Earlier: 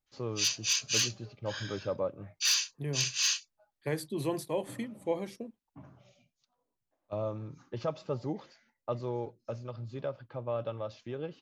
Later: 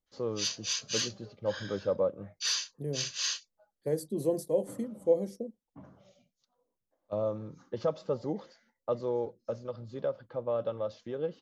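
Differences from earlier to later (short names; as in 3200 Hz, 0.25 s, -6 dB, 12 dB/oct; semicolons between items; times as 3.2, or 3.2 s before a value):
second voice: add band shelf 1900 Hz -12 dB 2.5 oct; background: add air absorption 67 m; master: add thirty-one-band EQ 125 Hz -7 dB, 200 Hz +5 dB, 500 Hz +8 dB, 2500 Hz -8 dB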